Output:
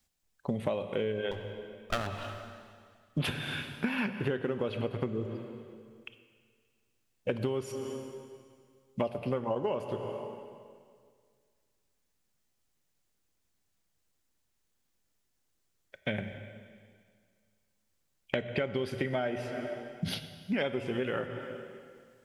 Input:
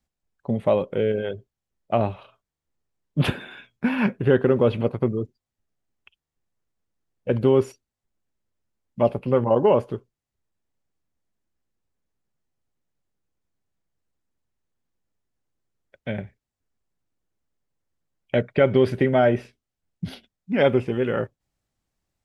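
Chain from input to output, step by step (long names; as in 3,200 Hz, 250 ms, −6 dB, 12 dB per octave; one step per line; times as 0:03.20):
0:01.31–0:02.07: lower of the sound and its delayed copy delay 0.54 ms
high-shelf EQ 2,000 Hz +10.5 dB
mains-hum notches 60/120/180 Hz
on a send at −11.5 dB: convolution reverb RT60 2.0 s, pre-delay 19 ms
on the sum: downward compressor 12 to 1, threshold −28 dBFS, peak gain reduction 17.5 dB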